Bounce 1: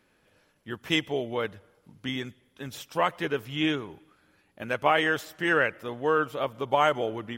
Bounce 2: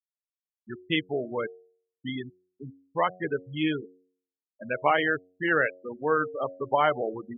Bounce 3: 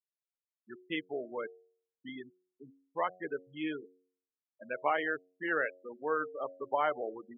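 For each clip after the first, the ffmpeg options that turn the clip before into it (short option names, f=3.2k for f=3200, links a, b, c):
-filter_complex "[0:a]afftfilt=real='re*gte(hypot(re,im),0.0708)':imag='im*gte(hypot(re,im),0.0708)':win_size=1024:overlap=0.75,acrossover=split=3900[a][b];[b]acompressor=threshold=-53dB:ratio=4:attack=1:release=60[c];[a][c]amix=inputs=2:normalize=0,bandreject=f=91.45:t=h:w=4,bandreject=f=182.9:t=h:w=4,bandreject=f=274.35:t=h:w=4,bandreject=f=365.8:t=h:w=4,bandreject=f=457.25:t=h:w=4,bandreject=f=548.7:t=h:w=4,bandreject=f=640.15:t=h:w=4,bandreject=f=731.6:t=h:w=4"
-af "highpass=280,lowpass=2.6k,volume=-7dB"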